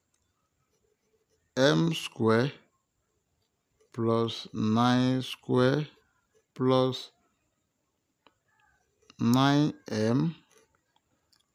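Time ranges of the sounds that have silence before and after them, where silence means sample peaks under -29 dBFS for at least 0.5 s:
1.57–2.48 s
3.98–5.83 s
6.60–6.97 s
9.21–10.30 s

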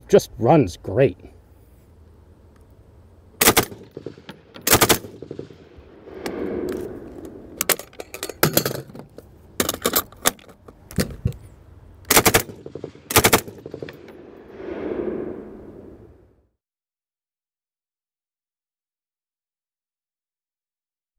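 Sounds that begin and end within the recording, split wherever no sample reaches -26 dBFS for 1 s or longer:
3.41–15.40 s

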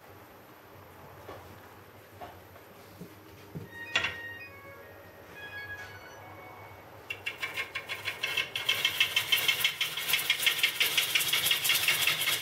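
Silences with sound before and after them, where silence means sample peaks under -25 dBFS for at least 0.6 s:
4.07–7.11 s

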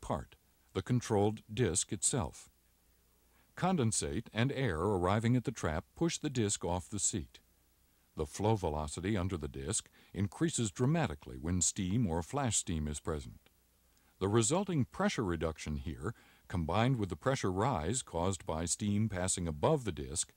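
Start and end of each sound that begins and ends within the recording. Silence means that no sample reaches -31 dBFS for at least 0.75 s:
3.63–7.20 s
8.20–13.17 s

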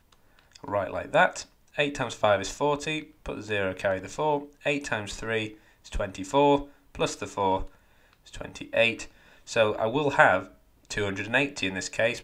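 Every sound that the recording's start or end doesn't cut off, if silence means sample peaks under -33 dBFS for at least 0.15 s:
0.56–1.42 s
1.78–3.00 s
3.26–4.44 s
4.66–5.48 s
5.92–6.62 s
6.95–7.66 s
8.34–9.05 s
9.49–10.43 s

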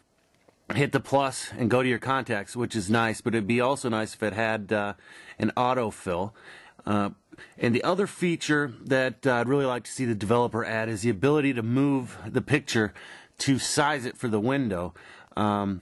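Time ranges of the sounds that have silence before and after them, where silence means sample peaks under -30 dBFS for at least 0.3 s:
0.70–4.92 s
5.40–6.27 s
6.87–7.10 s
7.62–12.88 s
13.40–14.88 s

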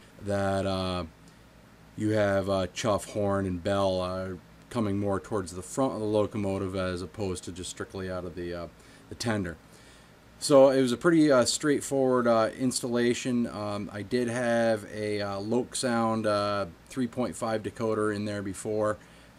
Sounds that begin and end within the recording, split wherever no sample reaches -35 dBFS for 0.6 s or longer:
1.98–9.53 s

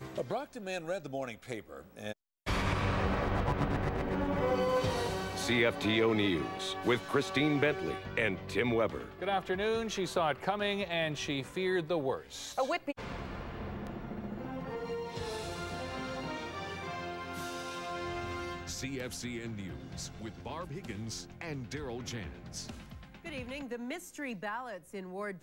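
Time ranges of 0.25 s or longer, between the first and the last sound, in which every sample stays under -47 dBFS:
2.13–2.46 s

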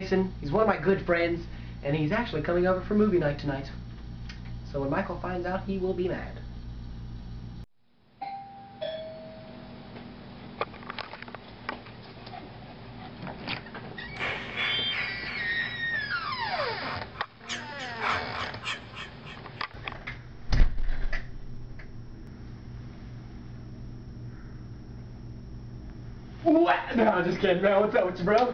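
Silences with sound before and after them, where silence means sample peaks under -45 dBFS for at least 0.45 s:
7.64–8.21 s

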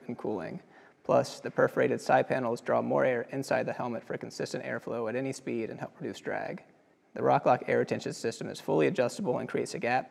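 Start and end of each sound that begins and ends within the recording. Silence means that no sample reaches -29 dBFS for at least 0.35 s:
1.09–6.53 s

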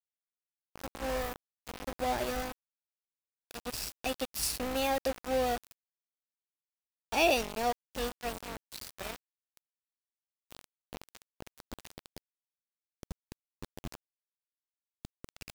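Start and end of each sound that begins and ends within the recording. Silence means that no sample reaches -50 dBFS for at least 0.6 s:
0.76–2.52 s
3.51–5.72 s
7.12–9.57 s
10.51–12.18 s
13.03–13.95 s

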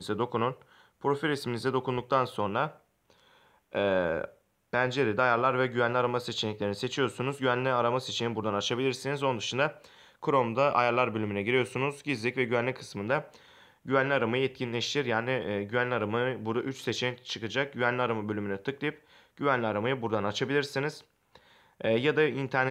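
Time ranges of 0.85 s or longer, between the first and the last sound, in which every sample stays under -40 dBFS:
2.71–3.73 s

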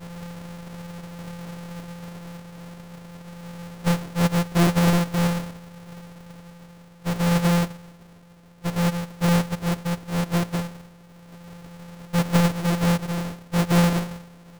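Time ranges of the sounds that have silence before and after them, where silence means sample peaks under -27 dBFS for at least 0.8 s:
3.86–5.40 s
7.06–7.65 s
8.66–10.62 s

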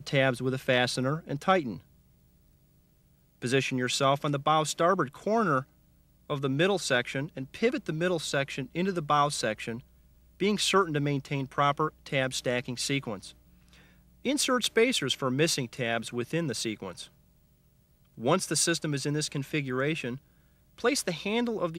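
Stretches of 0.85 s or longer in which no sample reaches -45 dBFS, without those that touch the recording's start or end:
1.79–3.42 s
17.07–18.18 s

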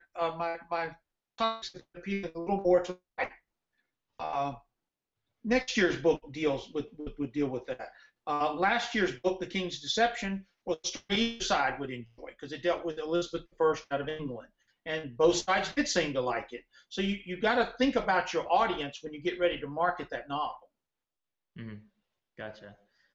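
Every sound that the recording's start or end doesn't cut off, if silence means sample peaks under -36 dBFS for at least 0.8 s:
4.20–4.54 s
5.45–20.52 s

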